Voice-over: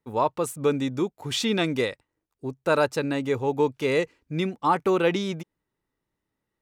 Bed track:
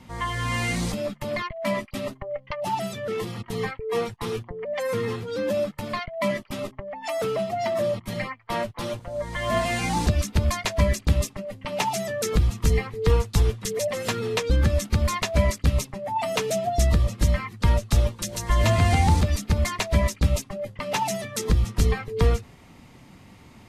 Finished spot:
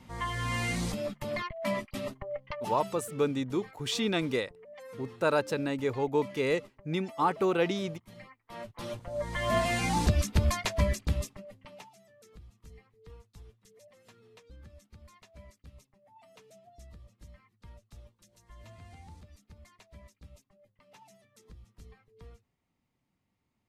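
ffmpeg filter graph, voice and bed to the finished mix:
-filter_complex "[0:a]adelay=2550,volume=-5dB[a];[1:a]volume=11dB,afade=t=out:st=2.42:d=0.78:silence=0.188365,afade=t=in:st=8.5:d=0.74:silence=0.149624,afade=t=out:st=10.44:d=1.45:silence=0.0398107[b];[a][b]amix=inputs=2:normalize=0"

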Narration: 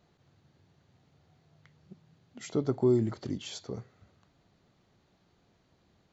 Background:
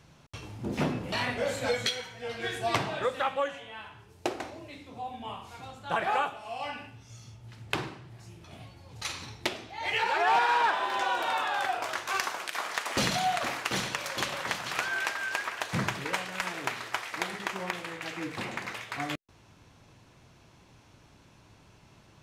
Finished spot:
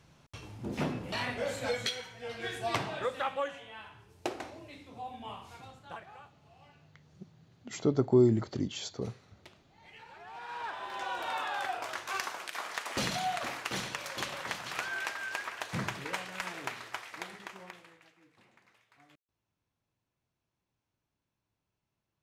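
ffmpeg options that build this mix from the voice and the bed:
-filter_complex "[0:a]adelay=5300,volume=2dB[a];[1:a]volume=15.5dB,afade=t=out:st=5.52:d=0.54:silence=0.0944061,afade=t=in:st=10.33:d=1.09:silence=0.105925,afade=t=out:st=16.57:d=1.57:silence=0.0668344[b];[a][b]amix=inputs=2:normalize=0"

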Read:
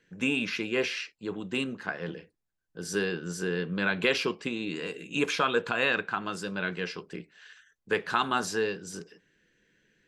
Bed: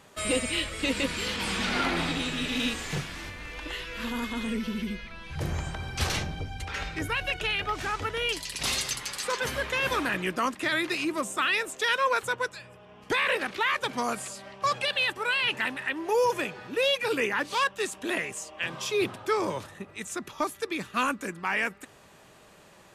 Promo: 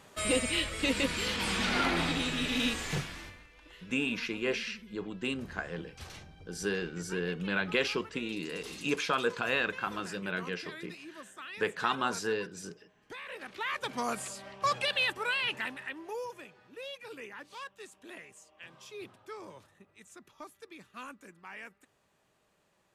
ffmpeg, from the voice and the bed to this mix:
-filter_complex "[0:a]adelay=3700,volume=-3.5dB[a];[1:a]volume=14.5dB,afade=t=out:st=2.95:d=0.53:silence=0.141254,afade=t=in:st=13.29:d=0.93:silence=0.158489,afade=t=out:st=15.03:d=1.29:silence=0.16788[b];[a][b]amix=inputs=2:normalize=0"

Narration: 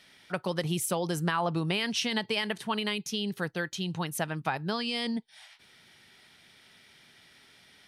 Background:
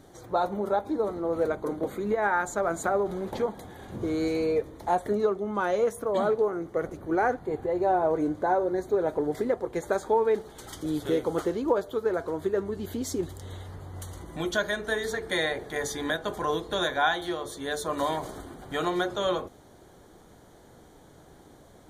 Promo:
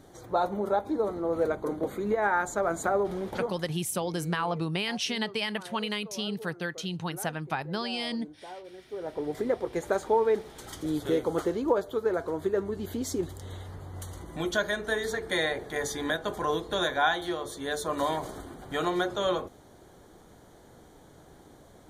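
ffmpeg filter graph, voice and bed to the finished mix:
-filter_complex "[0:a]adelay=3050,volume=-1dB[a];[1:a]volume=18dB,afade=t=out:st=3.21:d=0.63:silence=0.11885,afade=t=in:st=8.85:d=0.7:silence=0.11885[b];[a][b]amix=inputs=2:normalize=0"

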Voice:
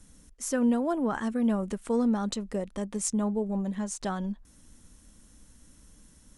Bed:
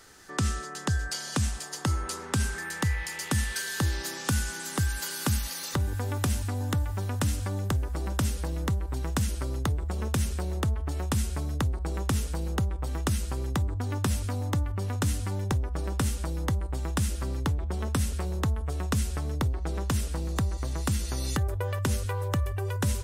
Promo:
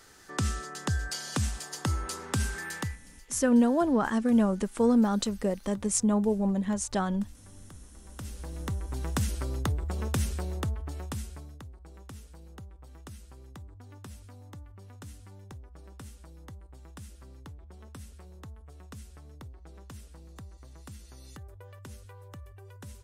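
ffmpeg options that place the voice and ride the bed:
-filter_complex "[0:a]adelay=2900,volume=3dB[a];[1:a]volume=19.5dB,afade=t=out:st=2.75:d=0.23:silence=0.0891251,afade=t=in:st=8.03:d=1.12:silence=0.0841395,afade=t=out:st=10.25:d=1.36:silence=0.141254[b];[a][b]amix=inputs=2:normalize=0"

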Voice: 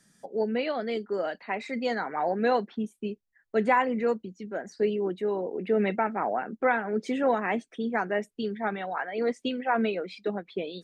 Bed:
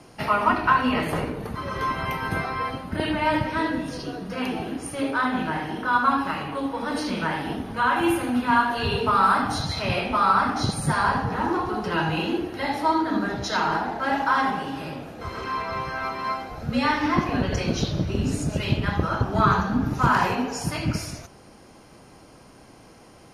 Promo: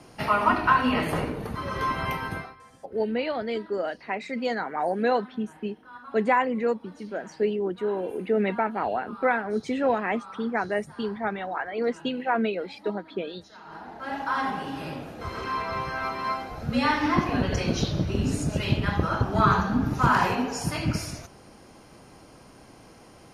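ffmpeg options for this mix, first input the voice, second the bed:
-filter_complex "[0:a]adelay=2600,volume=1dB[a];[1:a]volume=22dB,afade=t=out:st=2.12:d=0.44:silence=0.0707946,afade=t=in:st=13.64:d=1.29:silence=0.0707946[b];[a][b]amix=inputs=2:normalize=0"

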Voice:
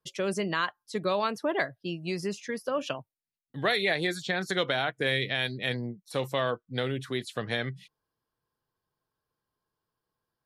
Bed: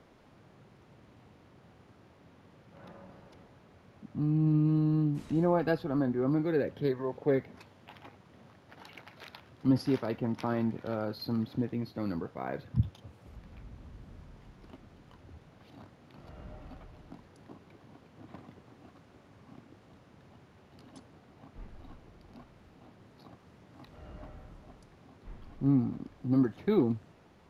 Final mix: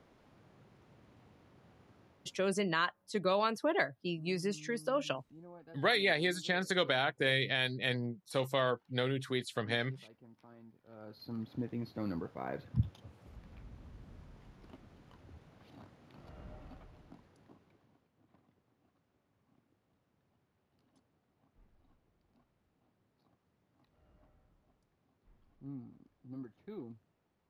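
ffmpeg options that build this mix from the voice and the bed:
-filter_complex "[0:a]adelay=2200,volume=-3dB[a];[1:a]volume=18.5dB,afade=t=out:st=1.99:d=0.77:silence=0.0794328,afade=t=in:st=10.85:d=1.1:silence=0.0707946,afade=t=out:st=16.55:d=1.55:silence=0.149624[b];[a][b]amix=inputs=2:normalize=0"

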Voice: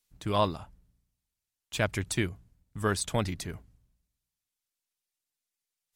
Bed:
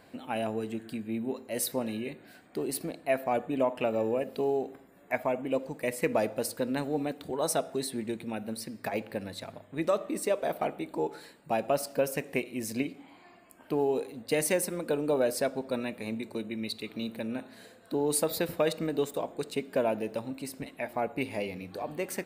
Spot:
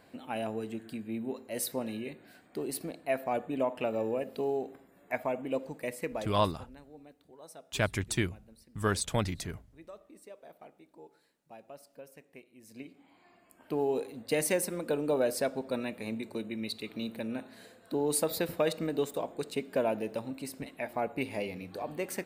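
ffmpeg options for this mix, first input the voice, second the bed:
-filter_complex "[0:a]adelay=6000,volume=-1dB[a];[1:a]volume=17dB,afade=t=out:st=5.69:d=0.8:silence=0.11885,afade=t=in:st=12.62:d=1.36:silence=0.1[b];[a][b]amix=inputs=2:normalize=0"

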